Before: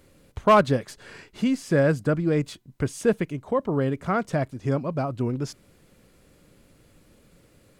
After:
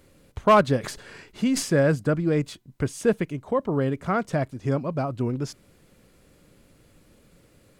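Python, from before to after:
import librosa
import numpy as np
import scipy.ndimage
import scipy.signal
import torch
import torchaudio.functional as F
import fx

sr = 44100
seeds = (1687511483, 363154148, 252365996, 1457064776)

y = fx.sustainer(x, sr, db_per_s=100.0, at=(0.83, 1.94), fade=0.02)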